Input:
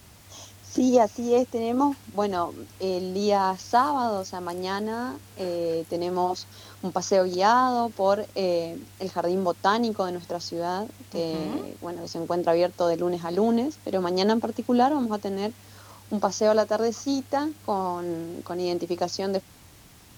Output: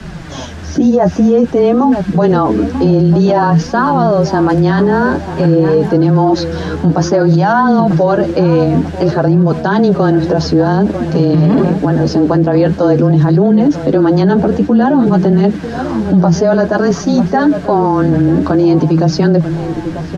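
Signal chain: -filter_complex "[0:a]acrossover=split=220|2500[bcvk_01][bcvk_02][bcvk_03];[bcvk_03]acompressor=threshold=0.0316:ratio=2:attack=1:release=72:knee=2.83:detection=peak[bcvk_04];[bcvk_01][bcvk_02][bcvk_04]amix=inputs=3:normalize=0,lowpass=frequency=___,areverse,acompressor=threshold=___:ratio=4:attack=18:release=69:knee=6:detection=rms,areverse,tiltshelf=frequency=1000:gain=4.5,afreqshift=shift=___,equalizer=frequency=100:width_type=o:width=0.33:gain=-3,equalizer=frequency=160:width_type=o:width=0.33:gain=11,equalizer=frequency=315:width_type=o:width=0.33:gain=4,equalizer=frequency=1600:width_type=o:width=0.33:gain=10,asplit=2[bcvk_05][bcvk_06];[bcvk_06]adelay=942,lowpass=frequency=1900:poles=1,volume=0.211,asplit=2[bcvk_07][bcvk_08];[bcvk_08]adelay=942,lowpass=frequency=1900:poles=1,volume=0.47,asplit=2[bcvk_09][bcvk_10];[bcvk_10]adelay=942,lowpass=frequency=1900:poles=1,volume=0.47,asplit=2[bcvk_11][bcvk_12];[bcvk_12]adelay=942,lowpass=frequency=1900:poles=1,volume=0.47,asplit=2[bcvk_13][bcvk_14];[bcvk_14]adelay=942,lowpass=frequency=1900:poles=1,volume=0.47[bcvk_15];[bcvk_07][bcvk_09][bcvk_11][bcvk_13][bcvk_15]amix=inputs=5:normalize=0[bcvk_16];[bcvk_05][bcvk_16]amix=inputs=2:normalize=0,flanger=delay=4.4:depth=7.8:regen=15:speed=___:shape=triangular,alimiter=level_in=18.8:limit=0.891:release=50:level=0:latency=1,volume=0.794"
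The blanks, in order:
4900, 0.0316, -19, 0.52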